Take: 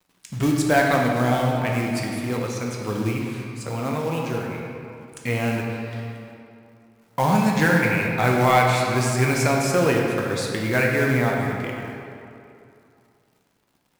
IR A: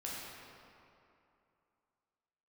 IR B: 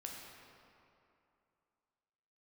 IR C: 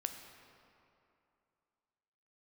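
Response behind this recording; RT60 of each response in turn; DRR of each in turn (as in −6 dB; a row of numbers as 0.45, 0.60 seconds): B; 2.7, 2.7, 2.7 seconds; −6.0, −1.5, 5.5 decibels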